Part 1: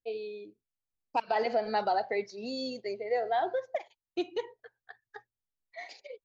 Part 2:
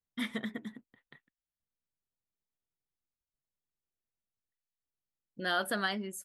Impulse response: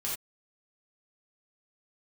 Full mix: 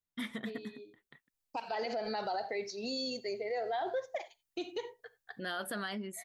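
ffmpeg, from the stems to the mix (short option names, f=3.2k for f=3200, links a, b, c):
-filter_complex "[0:a]highshelf=f=3.9k:g=10,adelay=400,volume=-1dB,asplit=2[a][b];[b]volume=-19.5dB[c];[1:a]volume=-2dB,asplit=2[d][e];[e]apad=whole_len=293045[f];[a][f]sidechaincompress=threshold=-46dB:ratio=8:attack=16:release=1210[g];[2:a]atrim=start_sample=2205[h];[c][h]afir=irnorm=-1:irlink=0[i];[g][d][i]amix=inputs=3:normalize=0,alimiter=level_in=4dB:limit=-24dB:level=0:latency=1:release=43,volume=-4dB"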